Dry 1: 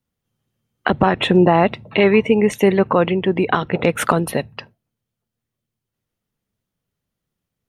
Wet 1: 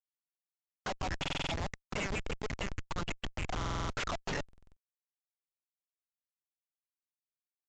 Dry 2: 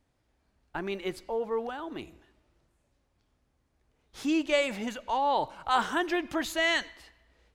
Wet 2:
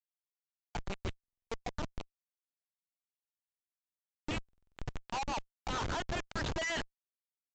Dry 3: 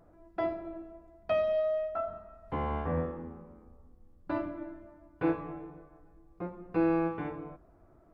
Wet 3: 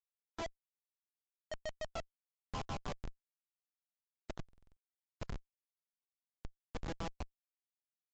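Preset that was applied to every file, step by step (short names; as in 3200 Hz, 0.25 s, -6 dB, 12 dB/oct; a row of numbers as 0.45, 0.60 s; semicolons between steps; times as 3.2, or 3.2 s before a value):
dynamic EQ 190 Hz, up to +5 dB, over -31 dBFS, Q 2.2; compressor 12:1, threshold -21 dBFS; LFO high-pass saw down 6.5 Hz 600–3000 Hz; Schmitt trigger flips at -30 dBFS; downsampling 16000 Hz; stuck buffer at 1.19/3.57/4.44, samples 2048, times 6; gain -1 dB; MP3 80 kbps 22050 Hz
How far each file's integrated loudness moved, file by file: -21.0, -10.0, -13.5 LU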